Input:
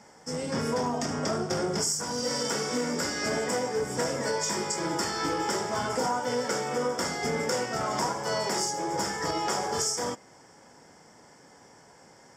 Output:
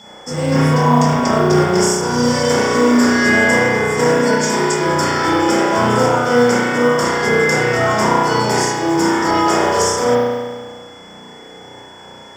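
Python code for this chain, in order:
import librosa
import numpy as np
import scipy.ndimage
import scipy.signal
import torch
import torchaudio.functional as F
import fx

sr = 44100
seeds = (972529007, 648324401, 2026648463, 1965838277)

y = fx.rev_spring(x, sr, rt60_s=1.5, pass_ms=(33,), chirp_ms=80, drr_db=-7.5)
y = fx.quant_companded(y, sr, bits=8)
y = y + 10.0 ** (-49.0 / 20.0) * np.sin(2.0 * np.pi * 3400.0 * np.arange(len(y)) / sr)
y = F.gain(torch.from_numpy(y), 7.5).numpy()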